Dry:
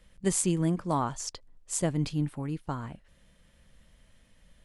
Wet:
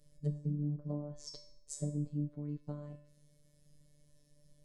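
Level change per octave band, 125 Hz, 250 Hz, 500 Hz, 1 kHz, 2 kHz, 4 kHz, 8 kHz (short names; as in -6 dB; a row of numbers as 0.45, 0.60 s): -5.5 dB, -9.5 dB, -13.0 dB, -26.0 dB, under -25 dB, -12.0 dB, -18.0 dB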